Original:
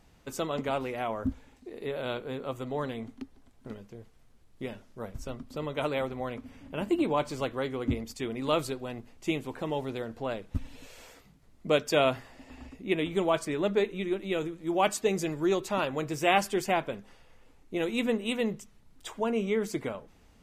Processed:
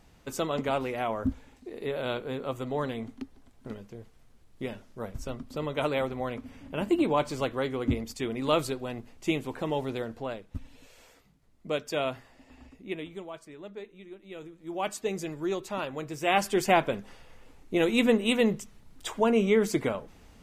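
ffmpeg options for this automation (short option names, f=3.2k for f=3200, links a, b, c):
-af "volume=23dB,afade=t=out:st=10.02:d=0.43:silence=0.421697,afade=t=out:st=12.81:d=0.47:silence=0.316228,afade=t=in:st=14.22:d=0.86:silence=0.266073,afade=t=in:st=16.2:d=0.57:silence=0.334965"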